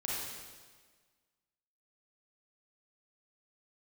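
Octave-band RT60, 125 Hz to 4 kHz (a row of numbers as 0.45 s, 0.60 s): 1.5 s, 1.6 s, 1.6 s, 1.5 s, 1.4 s, 1.4 s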